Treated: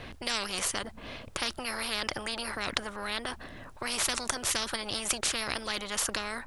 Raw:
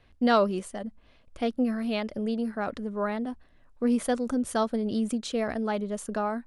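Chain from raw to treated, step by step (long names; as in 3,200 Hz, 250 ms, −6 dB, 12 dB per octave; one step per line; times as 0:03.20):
every bin compressed towards the loudest bin 10 to 1
level +6.5 dB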